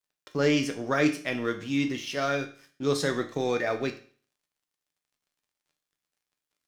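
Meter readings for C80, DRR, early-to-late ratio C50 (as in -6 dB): 16.5 dB, 5.0 dB, 12.5 dB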